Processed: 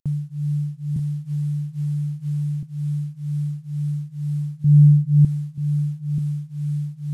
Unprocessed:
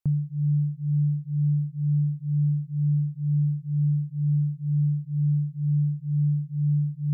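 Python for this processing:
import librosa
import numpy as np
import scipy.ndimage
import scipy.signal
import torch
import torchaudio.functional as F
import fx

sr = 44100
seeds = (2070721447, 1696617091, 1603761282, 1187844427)

y = fx.cvsd(x, sr, bps=64000)
y = fx.peak_eq(y, sr, hz=130.0, db=12.5, octaves=2.9, at=(4.64, 5.25))
y = y + 10.0 ** (-8.0 / 20.0) * np.pad(y, (int(934 * sr / 1000.0), 0))[:len(y)]
y = fx.band_squash(y, sr, depth_pct=100, at=(0.96, 2.63))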